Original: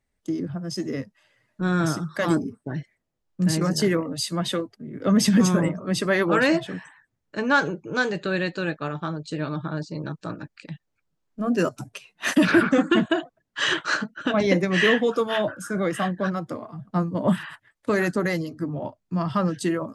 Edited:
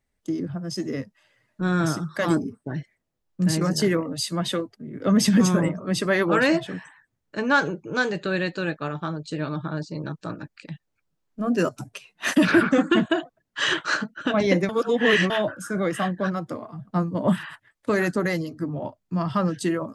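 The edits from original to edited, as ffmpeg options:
ffmpeg -i in.wav -filter_complex "[0:a]asplit=3[link_01][link_02][link_03];[link_01]atrim=end=14.692[link_04];[link_02]atrim=start=14.688:end=15.302,asetpts=PTS-STARTPTS,areverse[link_05];[link_03]atrim=start=15.298[link_06];[link_04][link_05]acrossfade=duration=0.004:curve1=hsin:curve2=hsin[link_07];[link_07][link_06]acrossfade=duration=0.004:curve1=hsin:curve2=hsin" out.wav

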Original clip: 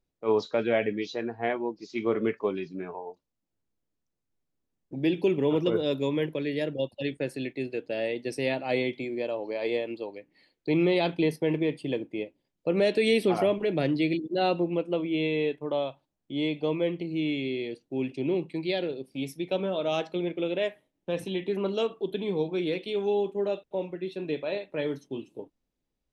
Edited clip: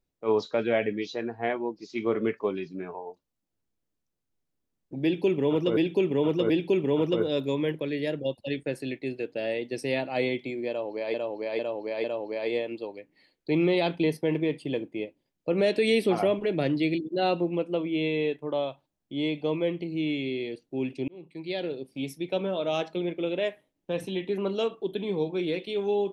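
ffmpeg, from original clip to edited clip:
ffmpeg -i in.wav -filter_complex "[0:a]asplit=7[link_01][link_02][link_03][link_04][link_05][link_06][link_07];[link_01]atrim=end=5.772[link_08];[link_02]atrim=start=5.038:end=5.772[link_09];[link_03]atrim=start=5.038:end=9.682[link_10];[link_04]atrim=start=9.228:end=9.682[link_11];[link_05]atrim=start=9.228:end=9.682[link_12];[link_06]atrim=start=9.228:end=18.27,asetpts=PTS-STARTPTS,afade=type=out:start_time=9.038:duration=0.004:curve=hsin[link_13];[link_07]atrim=start=18.27,asetpts=PTS-STARTPTS,afade=type=in:duration=0.67[link_14];[link_08][link_09]acrossfade=duration=0.004:curve1=hsin:curve2=hsin[link_15];[link_15][link_10]acrossfade=duration=0.004:curve1=hsin:curve2=hsin[link_16];[link_16][link_11]acrossfade=duration=0.004:curve1=hsin:curve2=hsin[link_17];[link_17][link_12]acrossfade=duration=0.004:curve1=hsin:curve2=hsin[link_18];[link_13][link_14]concat=n=2:v=0:a=1[link_19];[link_18][link_19]acrossfade=duration=0.004:curve1=hsin:curve2=hsin" out.wav

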